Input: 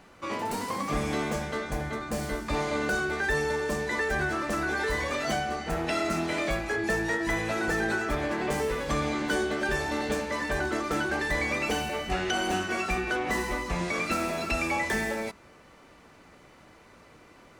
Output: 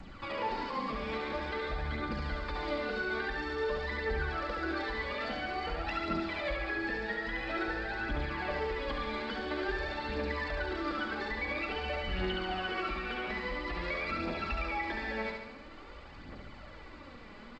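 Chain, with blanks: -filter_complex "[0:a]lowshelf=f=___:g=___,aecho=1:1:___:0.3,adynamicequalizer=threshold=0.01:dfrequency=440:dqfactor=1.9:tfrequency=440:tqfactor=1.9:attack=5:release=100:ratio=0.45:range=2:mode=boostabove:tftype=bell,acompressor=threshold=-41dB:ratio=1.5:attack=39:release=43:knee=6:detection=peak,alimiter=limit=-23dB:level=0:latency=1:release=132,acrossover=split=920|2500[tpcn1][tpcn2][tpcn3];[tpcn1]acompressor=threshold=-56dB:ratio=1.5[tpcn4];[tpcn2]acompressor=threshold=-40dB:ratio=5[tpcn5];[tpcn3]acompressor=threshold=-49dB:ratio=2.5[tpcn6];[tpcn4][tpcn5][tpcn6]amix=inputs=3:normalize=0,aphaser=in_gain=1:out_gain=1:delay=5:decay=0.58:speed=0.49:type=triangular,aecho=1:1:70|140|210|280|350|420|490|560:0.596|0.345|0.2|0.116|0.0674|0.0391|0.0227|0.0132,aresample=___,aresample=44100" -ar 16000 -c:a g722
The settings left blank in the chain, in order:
170, 10, 3.6, 11025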